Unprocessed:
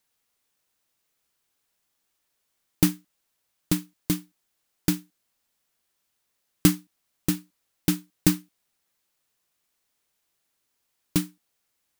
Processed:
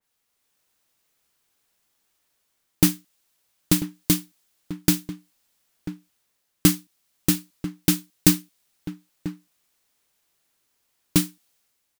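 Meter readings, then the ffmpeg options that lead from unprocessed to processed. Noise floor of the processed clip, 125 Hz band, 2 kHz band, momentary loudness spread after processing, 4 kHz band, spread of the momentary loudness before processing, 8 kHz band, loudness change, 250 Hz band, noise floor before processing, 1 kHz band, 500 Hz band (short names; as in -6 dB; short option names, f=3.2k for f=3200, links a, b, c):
-75 dBFS, +2.5 dB, +4.0 dB, 19 LU, +6.0 dB, 10 LU, +6.0 dB, +3.5 dB, +3.0 dB, -77 dBFS, +2.5 dB, +3.0 dB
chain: -filter_complex "[0:a]dynaudnorm=f=120:g=7:m=4.5dB,asplit=2[a][b];[b]adelay=991.3,volume=-12dB,highshelf=f=4k:g=-22.3[c];[a][c]amix=inputs=2:normalize=0,adynamicequalizer=threshold=0.00631:dfrequency=2400:dqfactor=0.7:tfrequency=2400:tqfactor=0.7:attack=5:release=100:ratio=0.375:range=3:mode=boostabove:tftype=highshelf"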